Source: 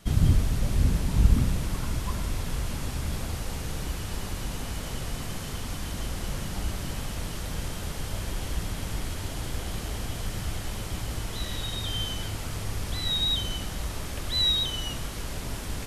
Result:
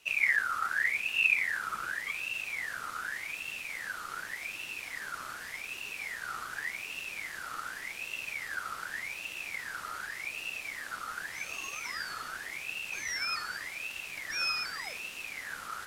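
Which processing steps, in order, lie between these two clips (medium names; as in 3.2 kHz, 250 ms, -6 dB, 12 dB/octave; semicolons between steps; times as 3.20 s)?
Chebyshev shaper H 2 -12 dB, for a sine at -6.5 dBFS; ring modulator with a swept carrier 2 kHz, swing 35%, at 0.86 Hz; trim -5 dB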